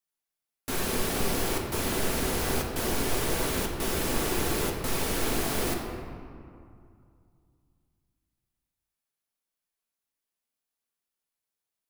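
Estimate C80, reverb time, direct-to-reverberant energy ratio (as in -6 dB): 4.5 dB, 2.3 s, 0.0 dB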